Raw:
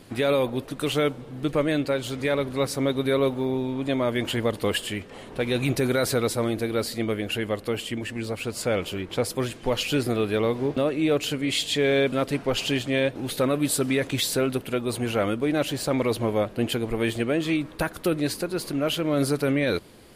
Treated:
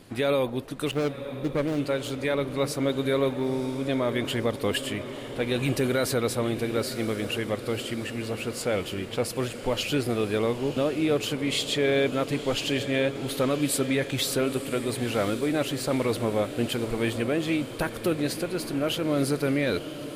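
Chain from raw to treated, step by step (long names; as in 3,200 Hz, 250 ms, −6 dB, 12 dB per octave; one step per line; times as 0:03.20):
0:00.91–0:01.80: running median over 41 samples
feedback delay with all-pass diffusion 985 ms, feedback 64%, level −12 dB
level −2 dB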